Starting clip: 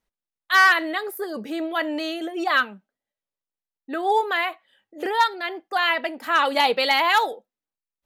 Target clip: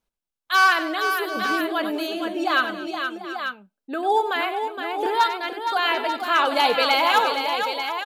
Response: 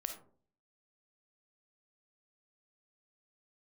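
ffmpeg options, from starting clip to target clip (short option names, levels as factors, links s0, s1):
-filter_complex "[0:a]bandreject=f=1900:w=6,asplit=2[s0][s1];[s1]aecho=0:1:95|226|467|739|888:0.251|0.119|0.447|0.178|0.398[s2];[s0][s2]amix=inputs=2:normalize=0"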